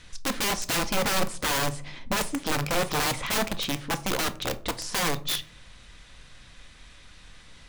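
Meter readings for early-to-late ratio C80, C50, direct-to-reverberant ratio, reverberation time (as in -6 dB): 23.5 dB, 18.5 dB, 10.0 dB, 0.50 s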